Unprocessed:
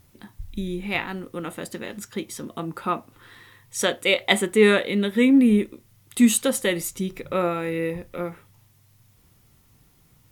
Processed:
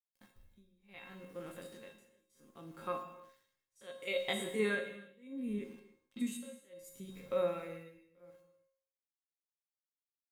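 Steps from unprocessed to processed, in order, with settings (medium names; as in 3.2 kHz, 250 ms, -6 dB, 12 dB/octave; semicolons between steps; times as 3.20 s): spectrogram pixelated in time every 50 ms; 5.53–6.19 s: low-pass 8.3 kHz -> 3.7 kHz 24 dB/octave; small samples zeroed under -45.5 dBFS; feedback comb 540 Hz, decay 0.45 s, mix 90%; tremolo 0.68 Hz, depth 98%; gated-style reverb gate 350 ms falling, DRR 6.5 dB; trim +3 dB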